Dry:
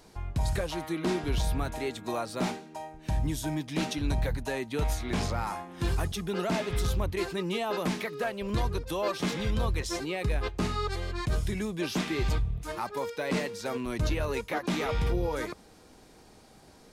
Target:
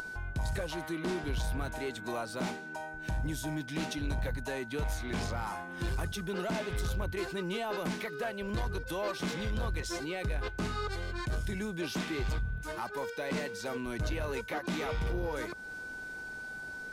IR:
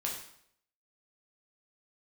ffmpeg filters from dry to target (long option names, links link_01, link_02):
-af "asoftclip=type=tanh:threshold=-23.5dB,aeval=exprs='val(0)+0.00794*sin(2*PI*1500*n/s)':channel_layout=same,acompressor=mode=upward:threshold=-33dB:ratio=2.5,volume=-3dB"